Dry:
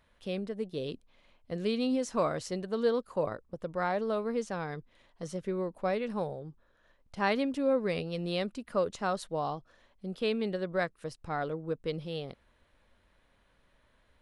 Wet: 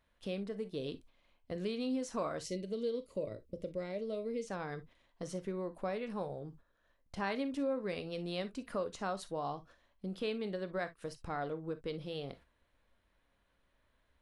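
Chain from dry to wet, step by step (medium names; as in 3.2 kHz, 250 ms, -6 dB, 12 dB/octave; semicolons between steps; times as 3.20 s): gate -55 dBFS, range -9 dB; compression 2:1, threshold -41 dBFS, peak gain reduction 10 dB; time-frequency box 2.40–4.48 s, 660–1900 Hz -16 dB; gated-style reverb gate 80 ms flat, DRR 10 dB; trim +1 dB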